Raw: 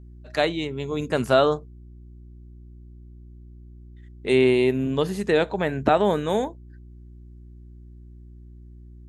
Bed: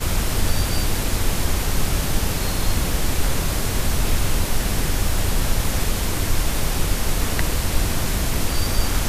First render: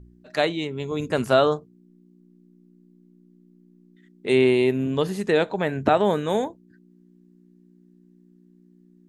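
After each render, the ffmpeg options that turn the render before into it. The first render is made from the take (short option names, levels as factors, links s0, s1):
-af "bandreject=f=60:t=h:w=4,bandreject=f=120:t=h:w=4"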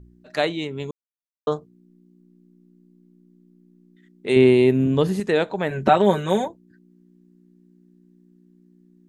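-filter_complex "[0:a]asettb=1/sr,asplit=3[s0][s1][s2];[s0]atrim=end=4.364[s3];[s1]atrim=start=4.36:end=5.2,asetpts=PTS-STARTPTS,afade=t=in:d=0.004:c=qsin,afade=t=out:st=0.836:d=0.004:c=qsin,lowshelf=f=390:g=7.5[s4];[s2]atrim=start=5.196[s5];[s3][s4]acrossfade=d=0.004:c1=hsin:c2=qsin[s6];[s6][s5]acrossfade=d=0.004:c1=qsin:c2=hsin,asettb=1/sr,asplit=3[s7][s8][s9];[s7]atrim=end=5.704[s10];[s8]atrim=start=5.7:end=6.48,asetpts=PTS-STARTPTS,afade=t=in:d=0.004:c=qsin,afade=t=out:st=0.776:d=0.004:c=qsin,aecho=1:1:5.3:0.9,atrim=end_sample=34398[s11];[s9]atrim=start=6.476[s12];[s10][s11]acrossfade=d=0.004:c1=hsin:c2=qsin[s13];[s13][s12]acrossfade=d=0.004:c1=qsin:c2=hsin,asplit=3[s14][s15][s16];[s14]atrim=end=0.91,asetpts=PTS-STARTPTS,afade=t=out:st=0.906:d=0.004:c=hsin[s17];[s15]atrim=start=0.91:end=1.47,asetpts=PTS-STARTPTS,volume=0[s18];[s16]atrim=start=1.47,asetpts=PTS-STARTPTS,afade=t=in:d=0.004:c=hsin[s19];[s17][s18][s19]concat=n=3:v=0:a=1"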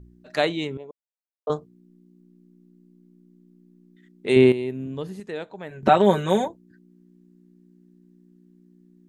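-filter_complex "[0:a]asettb=1/sr,asplit=3[s0][s1][s2];[s0]atrim=end=0.774[s3];[s1]atrim=start=0.77:end=1.5,asetpts=PTS-STARTPTS,afade=t=in:d=0.004:c=qsin,afade=t=out:st=0.726:d=0.004:c=qsin,bandpass=f=640:t=q:w=2.5[s4];[s2]atrim=start=1.496[s5];[s3][s4]acrossfade=d=0.004:c1=hsin:c2=qsin[s6];[s6][s5]acrossfade=d=0.004:c1=qsin:c2=hsin,asplit=3[s7][s8][s9];[s7]atrim=end=4.52,asetpts=PTS-STARTPTS,afade=t=out:st=4.35:d=0.17:c=log:silence=0.237137[s10];[s8]atrim=start=4.52:end=5.83,asetpts=PTS-STARTPTS,volume=0.237[s11];[s9]atrim=start=5.83,asetpts=PTS-STARTPTS,afade=t=in:d=0.17:c=log:silence=0.237137[s12];[s10][s11][s12]concat=n=3:v=0:a=1"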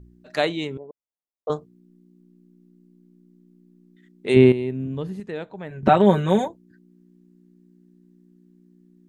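-filter_complex "[0:a]asettb=1/sr,asplit=3[s0][s1][s2];[s0]atrim=end=0.784[s3];[s1]atrim=start=0.78:end=1.48,asetpts=PTS-STARTPTS,afade=t=in:d=0.004:c=qsin,afade=t=out:st=0.696:d=0.004:c=qsin,lowpass=f=1000:w=0.5412,lowpass=f=1000:w=1.3066[s4];[s2]atrim=start=1.476[s5];[s3][s4]acrossfade=d=0.004:c1=hsin:c2=qsin[s6];[s6][s5]acrossfade=d=0.004:c1=qsin:c2=hsin,asettb=1/sr,asplit=3[s7][s8][s9];[s7]atrim=end=4.344[s10];[s8]atrim=start=4.34:end=6.39,asetpts=PTS-STARTPTS,afade=t=in:d=0.004:c=qsin,afade=t=out:st=2.046:d=0.004:c=qsin,bass=f=250:g=6,treble=f=4000:g=-6[s11];[s9]atrim=start=6.386[s12];[s10][s11]acrossfade=d=0.004:c1=hsin:c2=qsin[s13];[s13][s12]acrossfade=d=0.004:c1=qsin:c2=hsin"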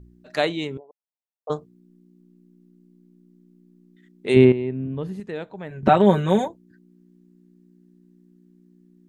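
-filter_complex "[0:a]asplit=3[s0][s1][s2];[s0]afade=t=out:st=0.79:d=0.02[s3];[s1]bandpass=f=800:t=q:w=2.2,afade=t=in:st=0.79:d=0.02,afade=t=out:st=1.49:d=0.02[s4];[s2]afade=t=in:st=1.49:d=0.02[s5];[s3][s4][s5]amix=inputs=3:normalize=0,asettb=1/sr,asplit=3[s6][s7][s8];[s6]atrim=end=4.454[s9];[s7]atrim=start=4.45:end=5.03,asetpts=PTS-STARTPTS,afade=t=in:d=0.004:c=qsin,afade=t=out:st=0.576:d=0.004:c=qsin,lowpass=2800[s10];[s8]atrim=start=5.026[s11];[s9][s10]acrossfade=d=0.004:c1=hsin:c2=qsin[s12];[s12][s11]acrossfade=d=0.004:c1=qsin:c2=hsin"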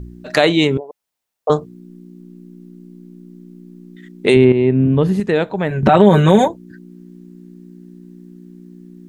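-filter_complex "[0:a]asplit=2[s0][s1];[s1]acompressor=threshold=0.0501:ratio=6,volume=1.19[s2];[s0][s2]amix=inputs=2:normalize=0,alimiter=level_in=2.82:limit=0.891:release=50:level=0:latency=1"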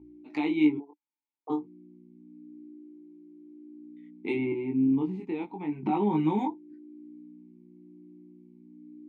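-filter_complex "[0:a]flanger=delay=19:depth=3.3:speed=0.31,asplit=3[s0][s1][s2];[s0]bandpass=f=300:t=q:w=8,volume=1[s3];[s1]bandpass=f=870:t=q:w=8,volume=0.501[s4];[s2]bandpass=f=2240:t=q:w=8,volume=0.355[s5];[s3][s4][s5]amix=inputs=3:normalize=0"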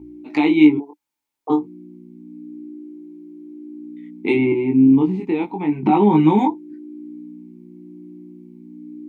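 -af "volume=3.98,alimiter=limit=0.794:level=0:latency=1"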